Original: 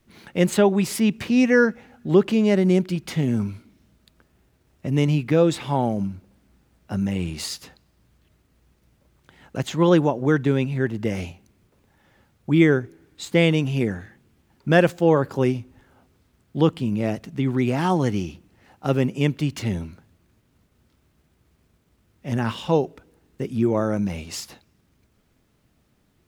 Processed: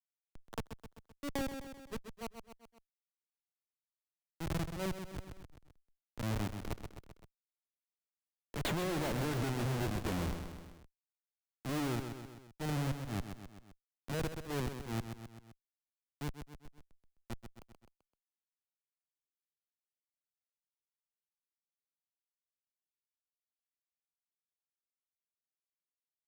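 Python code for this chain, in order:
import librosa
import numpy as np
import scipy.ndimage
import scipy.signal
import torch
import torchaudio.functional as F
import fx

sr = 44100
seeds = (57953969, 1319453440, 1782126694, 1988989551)

p1 = fx.doppler_pass(x, sr, speed_mps=37, closest_m=21.0, pass_at_s=9.12)
p2 = fx.schmitt(p1, sr, flips_db=-35.5)
p3 = fx.auto_swell(p2, sr, attack_ms=140.0)
p4 = p3 + fx.echo_feedback(p3, sr, ms=129, feedback_pct=40, wet_db=-9, dry=0)
y = fx.band_squash(p4, sr, depth_pct=70)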